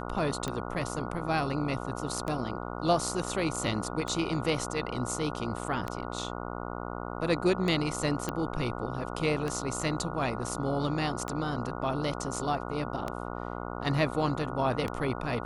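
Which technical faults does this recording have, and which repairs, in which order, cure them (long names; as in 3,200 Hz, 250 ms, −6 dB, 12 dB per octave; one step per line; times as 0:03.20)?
mains buzz 60 Hz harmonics 24 −37 dBFS
scratch tick 33 1/3 rpm −18 dBFS
0:08.29: click −16 dBFS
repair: click removal
hum removal 60 Hz, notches 24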